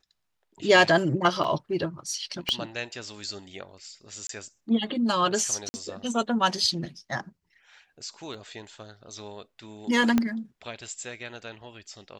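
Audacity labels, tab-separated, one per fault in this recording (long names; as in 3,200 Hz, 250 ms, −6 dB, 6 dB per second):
1.440000	1.440000	drop-out 3.9 ms
2.490000	2.490000	click −11 dBFS
4.270000	4.290000	drop-out 23 ms
5.690000	5.740000	drop-out 50 ms
8.340000	8.340000	drop-out 2.5 ms
10.180000	10.180000	click −10 dBFS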